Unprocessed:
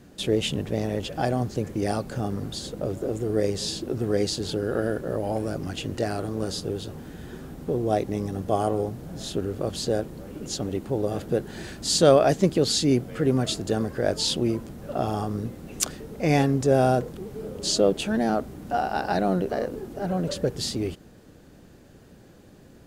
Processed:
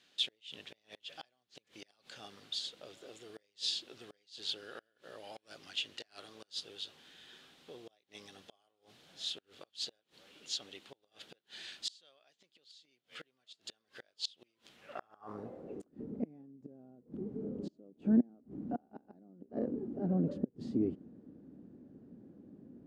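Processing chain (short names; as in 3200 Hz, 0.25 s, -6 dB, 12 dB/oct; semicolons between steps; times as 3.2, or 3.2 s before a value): flipped gate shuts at -15 dBFS, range -31 dB; band-pass sweep 3400 Hz -> 250 Hz, 14.69–15.99; gain +1.5 dB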